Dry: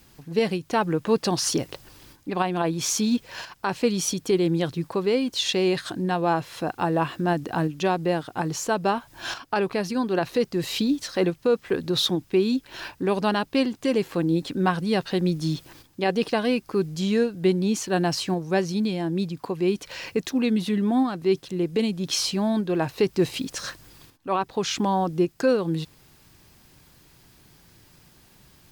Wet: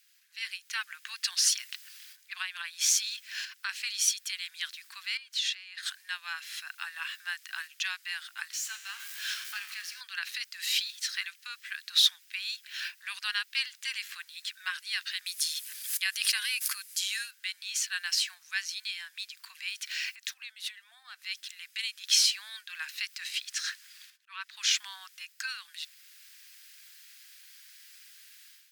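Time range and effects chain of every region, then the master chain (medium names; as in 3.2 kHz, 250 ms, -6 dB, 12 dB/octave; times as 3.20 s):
5.17–5.83 s: tilt EQ -2.5 dB/octave + compression 5:1, threshold -28 dBFS
8.52–10.01 s: jump at every zero crossing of -29.5 dBFS + feedback comb 71 Hz, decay 1.2 s, mix 70%
15.26–17.31 s: peaking EQ 11 kHz +14 dB 1.1 oct + hum notches 50/100/150 Hz + swell ahead of each attack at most 96 dB/s
20.08–21.22 s: compression 10:1, threshold -32 dBFS + peaking EQ 660 Hz +14 dB 0.81 oct
23.18–24.57 s: treble shelf 9.7 kHz -9 dB + slow attack 187 ms + Chebyshev high-pass 900 Hz, order 5
whole clip: level rider gain up to 12 dB; steep high-pass 1.6 kHz 36 dB/octave; trim -7.5 dB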